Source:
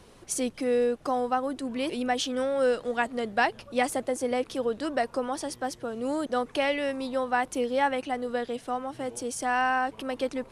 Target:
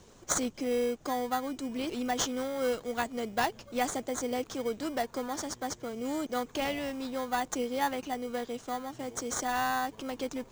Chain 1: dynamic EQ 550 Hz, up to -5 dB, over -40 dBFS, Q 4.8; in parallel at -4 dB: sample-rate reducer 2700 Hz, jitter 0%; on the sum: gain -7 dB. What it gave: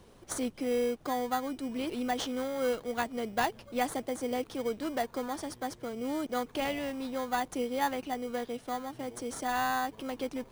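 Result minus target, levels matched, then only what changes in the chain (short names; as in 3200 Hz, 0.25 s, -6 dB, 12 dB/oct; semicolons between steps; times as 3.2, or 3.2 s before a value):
8000 Hz band -6.5 dB
add after dynamic EQ: synth low-pass 6900 Hz, resonance Q 4.9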